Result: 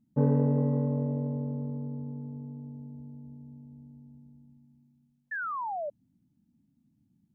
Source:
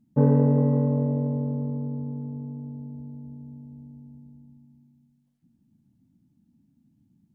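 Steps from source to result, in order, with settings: painted sound fall, 5.31–5.90 s, 560–1800 Hz -28 dBFS; trim -5.5 dB

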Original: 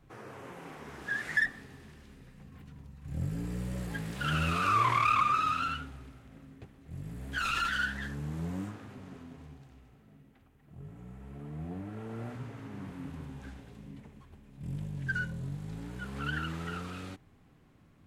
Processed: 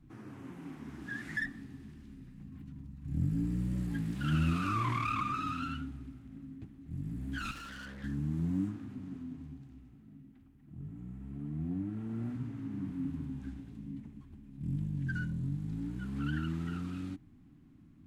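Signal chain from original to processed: resonant low shelf 370 Hz +8.5 dB, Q 3; 7.51–8.04 s: valve stage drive 36 dB, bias 0.65; trim -7.5 dB

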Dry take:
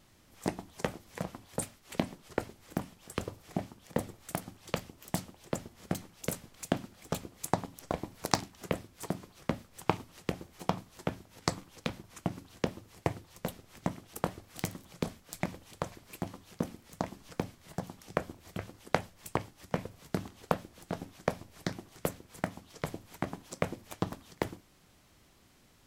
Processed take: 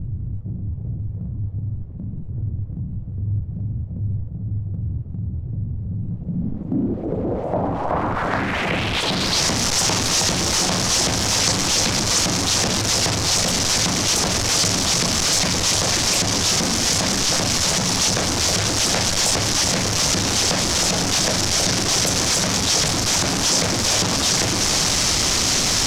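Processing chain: jump at every zero crossing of -19 dBFS; repeats whose band climbs or falls 318 ms, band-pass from 660 Hz, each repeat 0.7 oct, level -4 dB; low-pass sweep 110 Hz -> 5.8 kHz, 5.92–9.49 s; transient shaper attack -6 dB, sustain -1 dB; treble shelf 6.3 kHz +11.5 dB; trim +1.5 dB

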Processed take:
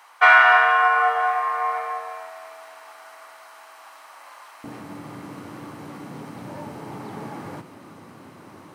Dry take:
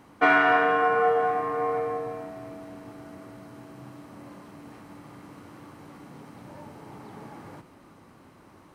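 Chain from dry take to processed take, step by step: high-pass 820 Hz 24 dB/octave, from 4.64 s 97 Hz; trim +8.5 dB

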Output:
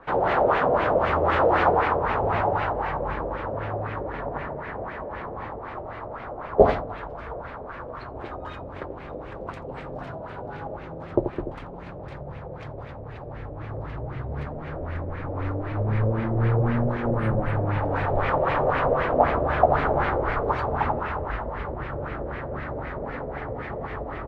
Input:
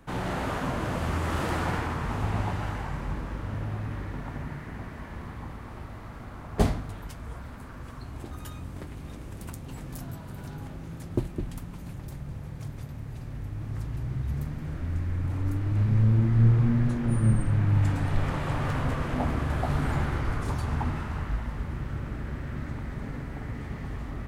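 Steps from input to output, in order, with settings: ten-band graphic EQ 250 Hz -5 dB, 500 Hz +5 dB, 2 kHz -5 dB, 4 kHz +5 dB; on a send: delay 85 ms -8 dB; on the sum: LFO low-pass sine 3.9 Hz 550–2300 Hz; tone controls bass -11 dB, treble -1 dB; trim +7.5 dB

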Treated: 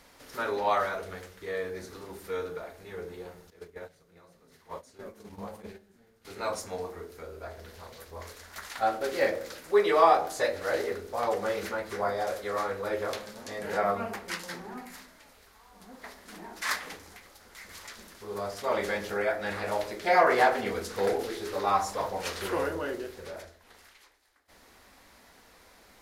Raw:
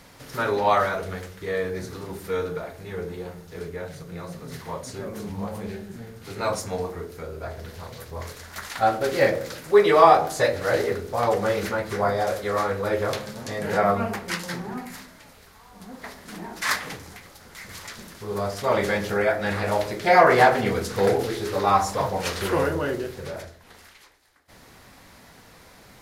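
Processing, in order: 3.50–6.25 s: gate -32 dBFS, range -13 dB; peaking EQ 130 Hz -14.5 dB 0.87 oct; trim -6 dB

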